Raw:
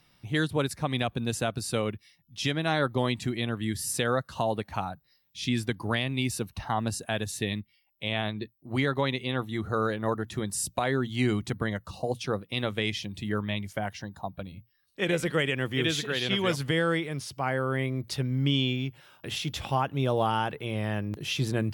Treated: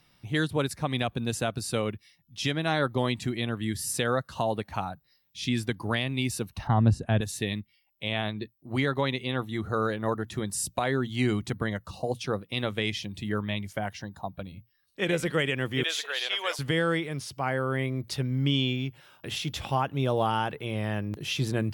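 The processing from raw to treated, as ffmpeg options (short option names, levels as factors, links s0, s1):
-filter_complex "[0:a]asettb=1/sr,asplit=3[s0][s1][s2];[s0]atrim=end=6.674[s3];[s1]atrim=start=6.67:end=7.21,asetpts=PTS-STARTPTS,afade=t=in:d=0.004:c=qsin,afade=t=out:st=0.536:d=0.004:c=qsin,aemphasis=mode=reproduction:type=riaa[s4];[s2]atrim=start=7.206[s5];[s3][s4]acrossfade=d=0.004:c1=hsin:c2=qsin[s6];[s6][s5]acrossfade=d=0.004:c1=qsin:c2=hsin,asettb=1/sr,asplit=3[s7][s8][s9];[s7]atrim=end=15.834[s10];[s8]atrim=start=15.83:end=16.59,asetpts=PTS-STARTPTS,afade=t=in:d=0.004:c=qsin,afade=t=out:st=0.756:d=0.004:c=qsin,highpass=f=560:w=0.5412,highpass=f=560:w=1.3066[s11];[s9]atrim=start=16.586[s12];[s10][s11]acrossfade=d=0.004:c1=hsin:c2=qsin[s13];[s13][s12]acrossfade=d=0.004:c1=qsin:c2=hsin"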